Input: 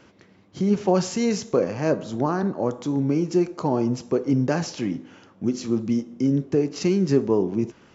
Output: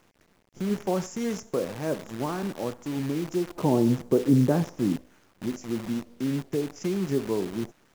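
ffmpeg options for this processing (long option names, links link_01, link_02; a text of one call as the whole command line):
ffmpeg -i in.wav -filter_complex "[0:a]asettb=1/sr,asplit=3[link_01][link_02][link_03];[link_01]atrim=end=3.554[link_04];[link_02]atrim=start=3.55:end=4.96,asetpts=PTS-STARTPTS,afade=type=in:duration=0.004:curve=qsin,afade=type=out:start_time=1.406:duration=0.004:curve=qsin,tiltshelf=frequency=1400:gain=9[link_05];[link_03]atrim=start=4.956[link_06];[link_04][link_05]acrossfade=duration=0.004:curve1=hsin:curve2=qsin[link_07];[link_07][link_06]acrossfade=duration=0.004:curve1=qsin:curve2=hsin,acrossover=split=2800[link_08][link_09];[link_08]acrusher=bits=6:dc=4:mix=0:aa=0.000001[link_10];[link_09]asuperstop=centerf=3600:order=4:qfactor=1.1[link_11];[link_10][link_11]amix=inputs=2:normalize=0,volume=-7dB" out.wav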